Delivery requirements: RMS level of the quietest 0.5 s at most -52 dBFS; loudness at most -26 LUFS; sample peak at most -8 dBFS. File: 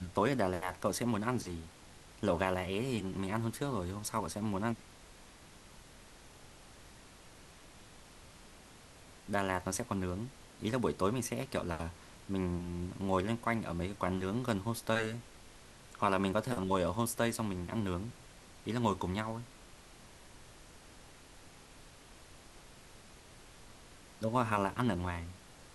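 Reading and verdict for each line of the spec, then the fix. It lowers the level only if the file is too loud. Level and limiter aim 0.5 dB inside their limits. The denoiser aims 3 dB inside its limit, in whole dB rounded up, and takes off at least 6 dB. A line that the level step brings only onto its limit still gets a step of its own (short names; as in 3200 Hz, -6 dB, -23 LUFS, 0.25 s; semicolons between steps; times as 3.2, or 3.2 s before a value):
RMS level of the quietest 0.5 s -56 dBFS: OK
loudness -35.5 LUFS: OK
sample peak -14.5 dBFS: OK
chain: none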